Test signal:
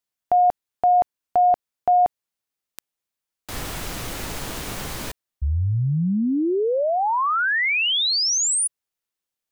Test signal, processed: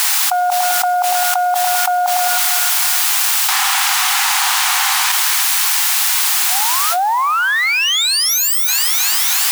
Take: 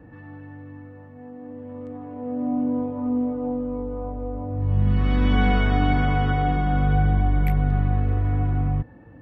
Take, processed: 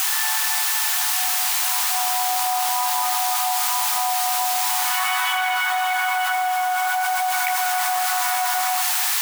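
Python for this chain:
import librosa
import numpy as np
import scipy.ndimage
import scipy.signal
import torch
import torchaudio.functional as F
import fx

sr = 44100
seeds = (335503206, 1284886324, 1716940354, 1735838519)

p1 = fx.self_delay(x, sr, depth_ms=0.08)
p2 = fx.rider(p1, sr, range_db=3, speed_s=2.0)
p3 = p1 + (p2 * 10.0 ** (0.5 / 20.0))
p4 = fx.quant_dither(p3, sr, seeds[0], bits=6, dither='triangular')
p5 = fx.brickwall_highpass(p4, sr, low_hz=720.0)
p6 = p5 + fx.echo_split(p5, sr, split_hz=1100.0, low_ms=104, high_ms=315, feedback_pct=52, wet_db=-14, dry=0)
p7 = fx.env_flatten(p6, sr, amount_pct=100)
y = p7 * 10.0 ** (-1.0 / 20.0)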